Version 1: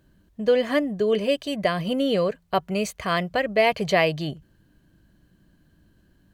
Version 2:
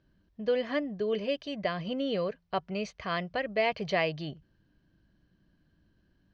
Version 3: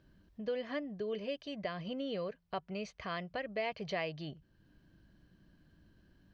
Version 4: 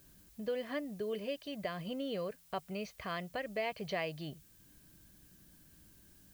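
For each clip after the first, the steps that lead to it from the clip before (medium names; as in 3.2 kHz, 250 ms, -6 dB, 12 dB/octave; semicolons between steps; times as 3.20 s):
Chebyshev low-pass 5.6 kHz, order 4; trim -7.5 dB
compression 1.5:1, threshold -59 dBFS, peak gain reduction 13 dB; trim +3.5 dB
added noise blue -64 dBFS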